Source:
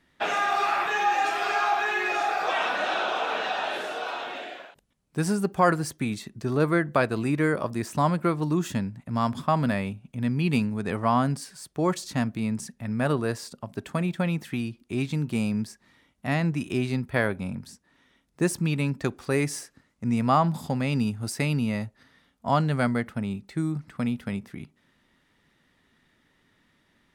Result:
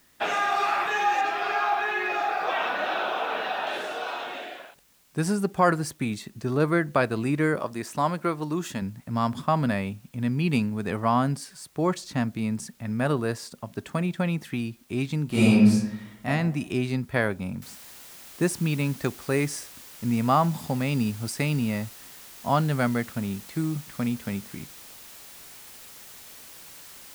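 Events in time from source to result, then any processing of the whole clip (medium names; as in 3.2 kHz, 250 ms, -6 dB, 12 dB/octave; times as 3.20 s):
1.21–3.67 s: distance through air 120 m
7.59–8.82 s: bass shelf 180 Hz -11 dB
11.70–12.34 s: low-pass 10 kHz -> 4.5 kHz 6 dB/octave
15.28–16.26 s: reverb throw, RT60 0.9 s, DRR -10.5 dB
17.62 s: noise floor step -62 dB -46 dB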